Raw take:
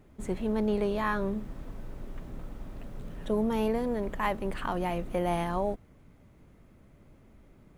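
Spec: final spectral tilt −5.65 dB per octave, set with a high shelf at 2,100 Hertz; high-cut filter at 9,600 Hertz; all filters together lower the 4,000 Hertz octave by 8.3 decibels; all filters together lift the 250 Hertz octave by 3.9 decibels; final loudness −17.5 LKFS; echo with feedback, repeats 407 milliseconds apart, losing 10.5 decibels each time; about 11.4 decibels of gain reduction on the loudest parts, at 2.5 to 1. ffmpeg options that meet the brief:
ffmpeg -i in.wav -af "lowpass=9600,equalizer=frequency=250:width_type=o:gain=5,highshelf=frequency=2100:gain=-8.5,equalizer=frequency=4000:width_type=o:gain=-3.5,acompressor=threshold=-39dB:ratio=2.5,aecho=1:1:407|814|1221:0.299|0.0896|0.0269,volume=22.5dB" out.wav

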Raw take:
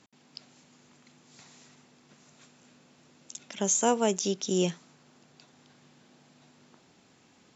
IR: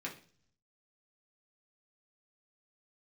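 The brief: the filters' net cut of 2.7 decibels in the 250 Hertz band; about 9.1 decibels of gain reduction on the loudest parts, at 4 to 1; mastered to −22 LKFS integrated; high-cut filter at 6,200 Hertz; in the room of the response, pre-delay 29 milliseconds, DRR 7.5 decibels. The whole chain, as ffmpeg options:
-filter_complex "[0:a]lowpass=6200,equalizer=frequency=250:width_type=o:gain=-4,acompressor=threshold=-31dB:ratio=4,asplit=2[link_01][link_02];[1:a]atrim=start_sample=2205,adelay=29[link_03];[link_02][link_03]afir=irnorm=-1:irlink=0,volume=-8.5dB[link_04];[link_01][link_04]amix=inputs=2:normalize=0,volume=14.5dB"

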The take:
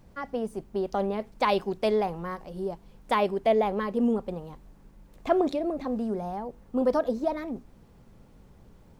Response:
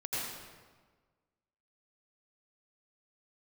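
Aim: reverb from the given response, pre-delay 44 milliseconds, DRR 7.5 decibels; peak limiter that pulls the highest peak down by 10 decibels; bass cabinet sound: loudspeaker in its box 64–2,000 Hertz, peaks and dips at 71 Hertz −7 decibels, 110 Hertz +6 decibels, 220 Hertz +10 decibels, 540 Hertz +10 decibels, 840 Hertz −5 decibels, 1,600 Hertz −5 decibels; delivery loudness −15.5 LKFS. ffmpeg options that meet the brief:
-filter_complex "[0:a]alimiter=limit=-20dB:level=0:latency=1,asplit=2[link_01][link_02];[1:a]atrim=start_sample=2205,adelay=44[link_03];[link_02][link_03]afir=irnorm=-1:irlink=0,volume=-12dB[link_04];[link_01][link_04]amix=inputs=2:normalize=0,highpass=frequency=64:width=0.5412,highpass=frequency=64:width=1.3066,equalizer=frequency=71:width_type=q:width=4:gain=-7,equalizer=frequency=110:width_type=q:width=4:gain=6,equalizer=frequency=220:width_type=q:width=4:gain=10,equalizer=frequency=540:width_type=q:width=4:gain=10,equalizer=frequency=840:width_type=q:width=4:gain=-5,equalizer=frequency=1600:width_type=q:width=4:gain=-5,lowpass=frequency=2000:width=0.5412,lowpass=frequency=2000:width=1.3066,volume=10dB"

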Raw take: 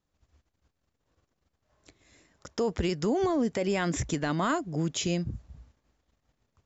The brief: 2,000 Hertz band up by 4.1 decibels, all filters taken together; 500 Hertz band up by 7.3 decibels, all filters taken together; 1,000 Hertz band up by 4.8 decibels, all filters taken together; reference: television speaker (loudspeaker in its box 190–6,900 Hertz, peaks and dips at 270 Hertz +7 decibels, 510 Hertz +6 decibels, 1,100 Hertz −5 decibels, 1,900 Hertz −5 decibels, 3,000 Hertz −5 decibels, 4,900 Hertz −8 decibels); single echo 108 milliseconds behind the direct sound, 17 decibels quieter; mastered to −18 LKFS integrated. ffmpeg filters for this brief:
ffmpeg -i in.wav -af "highpass=frequency=190:width=0.5412,highpass=frequency=190:width=1.3066,equalizer=frequency=270:width_type=q:width=4:gain=7,equalizer=frequency=510:width_type=q:width=4:gain=6,equalizer=frequency=1100:width_type=q:width=4:gain=-5,equalizer=frequency=1900:width_type=q:width=4:gain=-5,equalizer=frequency=3000:width_type=q:width=4:gain=-5,equalizer=frequency=4900:width_type=q:width=4:gain=-8,lowpass=frequency=6900:width=0.5412,lowpass=frequency=6900:width=1.3066,equalizer=frequency=500:width_type=o:gain=4,equalizer=frequency=1000:width_type=o:gain=5.5,equalizer=frequency=2000:width_type=o:gain=7,aecho=1:1:108:0.141,volume=6.5dB" out.wav

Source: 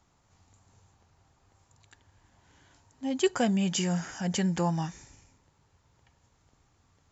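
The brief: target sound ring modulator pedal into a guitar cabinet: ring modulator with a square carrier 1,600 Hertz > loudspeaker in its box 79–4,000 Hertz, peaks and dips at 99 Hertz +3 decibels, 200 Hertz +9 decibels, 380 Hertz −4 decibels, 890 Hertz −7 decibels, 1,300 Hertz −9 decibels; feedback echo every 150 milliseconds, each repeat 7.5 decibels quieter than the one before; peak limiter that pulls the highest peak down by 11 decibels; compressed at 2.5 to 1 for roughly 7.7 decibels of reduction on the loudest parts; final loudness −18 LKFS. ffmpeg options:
ffmpeg -i in.wav -af "acompressor=threshold=-31dB:ratio=2.5,alimiter=level_in=7.5dB:limit=-24dB:level=0:latency=1,volume=-7.5dB,aecho=1:1:150|300|450|600|750:0.422|0.177|0.0744|0.0312|0.0131,aeval=exprs='val(0)*sgn(sin(2*PI*1600*n/s))':channel_layout=same,highpass=79,equalizer=frequency=99:width_type=q:width=4:gain=3,equalizer=frequency=200:width_type=q:width=4:gain=9,equalizer=frequency=380:width_type=q:width=4:gain=-4,equalizer=frequency=890:width_type=q:width=4:gain=-7,equalizer=frequency=1300:width_type=q:width=4:gain=-9,lowpass=frequency=4000:width=0.5412,lowpass=frequency=4000:width=1.3066,volume=23dB" out.wav

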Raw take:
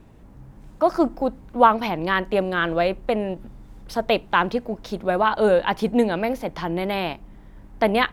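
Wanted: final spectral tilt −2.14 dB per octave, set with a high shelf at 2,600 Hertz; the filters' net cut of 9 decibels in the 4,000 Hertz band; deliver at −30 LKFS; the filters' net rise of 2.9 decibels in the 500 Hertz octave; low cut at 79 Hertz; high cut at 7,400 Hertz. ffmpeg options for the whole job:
ffmpeg -i in.wav -af "highpass=79,lowpass=7400,equalizer=frequency=500:width_type=o:gain=4,highshelf=frequency=2600:gain=-8.5,equalizer=frequency=4000:width_type=o:gain=-5.5,volume=-9dB" out.wav

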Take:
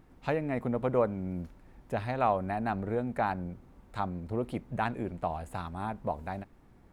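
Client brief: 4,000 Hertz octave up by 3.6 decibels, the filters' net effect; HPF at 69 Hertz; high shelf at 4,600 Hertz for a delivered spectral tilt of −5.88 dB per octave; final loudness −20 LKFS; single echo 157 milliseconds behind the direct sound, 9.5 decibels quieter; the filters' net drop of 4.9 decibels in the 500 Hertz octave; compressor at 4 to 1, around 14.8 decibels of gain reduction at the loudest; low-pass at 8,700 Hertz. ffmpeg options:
ffmpeg -i in.wav -af "highpass=69,lowpass=8700,equalizer=frequency=500:width_type=o:gain=-6,equalizer=frequency=4000:width_type=o:gain=6,highshelf=frequency=4600:gain=-3.5,acompressor=threshold=-43dB:ratio=4,aecho=1:1:157:0.335,volume=26dB" out.wav

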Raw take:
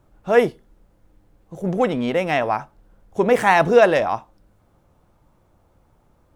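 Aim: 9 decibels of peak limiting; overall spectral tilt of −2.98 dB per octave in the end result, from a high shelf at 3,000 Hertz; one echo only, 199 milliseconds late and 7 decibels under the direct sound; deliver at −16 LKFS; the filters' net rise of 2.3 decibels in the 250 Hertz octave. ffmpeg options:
ffmpeg -i in.wav -af "equalizer=frequency=250:width_type=o:gain=3,highshelf=frequency=3000:gain=-5,alimiter=limit=-10.5dB:level=0:latency=1,aecho=1:1:199:0.447,volume=5.5dB" out.wav

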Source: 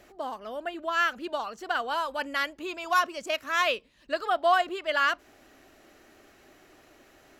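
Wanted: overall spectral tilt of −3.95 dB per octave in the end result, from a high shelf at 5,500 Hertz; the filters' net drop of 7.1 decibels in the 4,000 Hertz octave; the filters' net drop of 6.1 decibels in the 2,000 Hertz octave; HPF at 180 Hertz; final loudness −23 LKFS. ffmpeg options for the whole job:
ffmpeg -i in.wav -af "highpass=180,equalizer=frequency=2000:width_type=o:gain=-7,equalizer=frequency=4000:width_type=o:gain=-5.5,highshelf=frequency=5500:gain=-3.5,volume=8dB" out.wav

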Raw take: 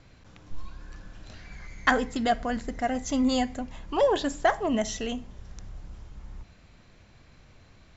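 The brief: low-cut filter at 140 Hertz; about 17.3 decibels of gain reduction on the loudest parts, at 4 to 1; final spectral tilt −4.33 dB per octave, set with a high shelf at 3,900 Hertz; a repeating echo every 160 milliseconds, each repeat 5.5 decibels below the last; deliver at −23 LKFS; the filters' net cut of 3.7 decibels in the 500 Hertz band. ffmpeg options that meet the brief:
ffmpeg -i in.wav -af "highpass=140,equalizer=frequency=500:width_type=o:gain=-4.5,highshelf=frequency=3900:gain=-7,acompressor=threshold=-41dB:ratio=4,aecho=1:1:160|320|480|640|800|960|1120:0.531|0.281|0.149|0.079|0.0419|0.0222|0.0118,volume=20.5dB" out.wav

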